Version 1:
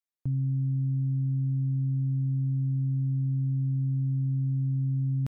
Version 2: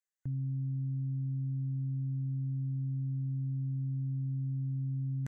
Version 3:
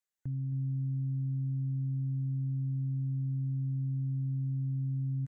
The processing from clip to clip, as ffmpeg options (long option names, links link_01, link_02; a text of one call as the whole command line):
ffmpeg -i in.wav -af "superequalizer=11b=3.16:15b=3.16,volume=-7dB" out.wav
ffmpeg -i in.wav -af "aecho=1:1:268:0.224" out.wav